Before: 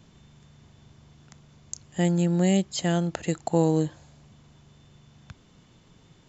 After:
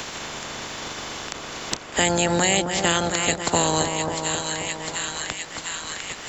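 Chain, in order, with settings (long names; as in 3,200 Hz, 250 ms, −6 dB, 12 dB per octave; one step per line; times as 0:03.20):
ceiling on every frequency bin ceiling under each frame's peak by 27 dB
echo with a time of its own for lows and highs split 1,500 Hz, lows 267 ms, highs 703 ms, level −8 dB
multiband upward and downward compressor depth 70%
level +3 dB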